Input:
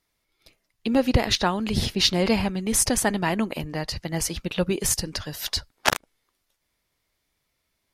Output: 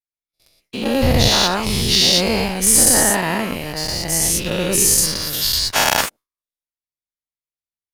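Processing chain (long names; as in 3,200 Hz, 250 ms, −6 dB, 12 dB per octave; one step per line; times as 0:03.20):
every bin's largest magnitude spread in time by 240 ms
noise gate with hold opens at −37 dBFS
high-shelf EQ 6,100 Hz +9 dB
leveller curve on the samples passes 2
level −10 dB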